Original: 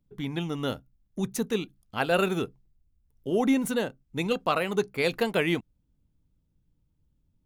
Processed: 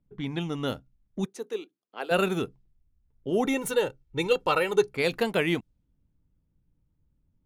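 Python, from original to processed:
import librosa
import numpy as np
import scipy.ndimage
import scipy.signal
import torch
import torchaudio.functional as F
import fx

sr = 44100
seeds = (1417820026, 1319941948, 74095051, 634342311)

y = fx.env_lowpass(x, sr, base_hz=2200.0, full_db=-24.5)
y = fx.ladder_highpass(y, sr, hz=320.0, resonance_pct=45, at=(1.24, 2.1), fade=0.02)
y = fx.comb(y, sr, ms=2.2, depth=0.81, at=(3.45, 4.95))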